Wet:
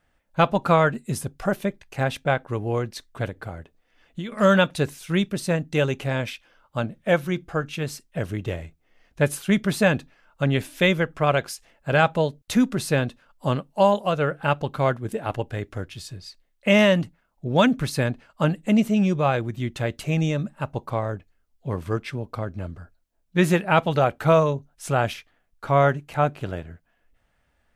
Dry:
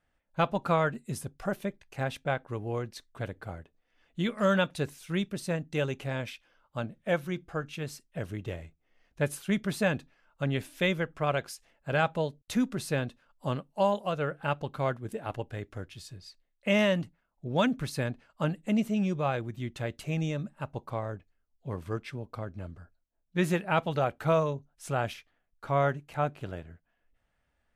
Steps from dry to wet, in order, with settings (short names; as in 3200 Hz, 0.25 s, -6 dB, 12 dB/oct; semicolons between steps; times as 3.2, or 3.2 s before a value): 3.26–4.32 compressor 12:1, threshold -37 dBFS, peak gain reduction 12.5 dB; gain +8 dB